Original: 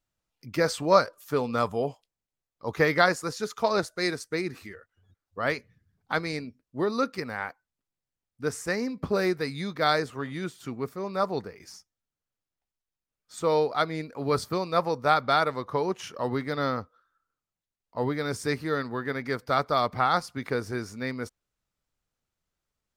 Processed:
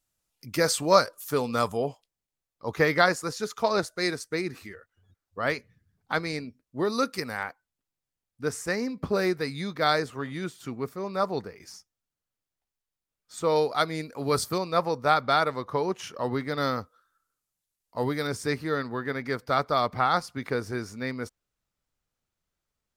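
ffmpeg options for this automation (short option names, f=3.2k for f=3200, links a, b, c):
-af "asetnsamples=n=441:p=0,asendcmd='1.77 equalizer g 2;6.85 equalizer g 12.5;7.43 equalizer g 1.5;13.56 equalizer g 10.5;14.58 equalizer g 1.5;16.58 equalizer g 12;18.27 equalizer g 0',equalizer=f=11k:t=o:w=1.8:g=11.5"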